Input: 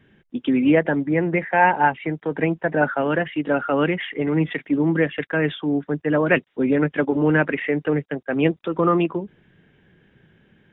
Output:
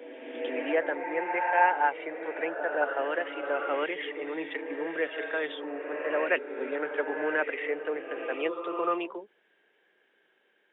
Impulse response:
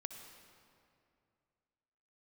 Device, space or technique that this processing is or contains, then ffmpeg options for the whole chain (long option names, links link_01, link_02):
ghost voice: -filter_complex "[0:a]areverse[link_01];[1:a]atrim=start_sample=2205[link_02];[link_01][link_02]afir=irnorm=-1:irlink=0,areverse,highpass=frequency=410:width=0.5412,highpass=frequency=410:width=1.3066,volume=-3.5dB"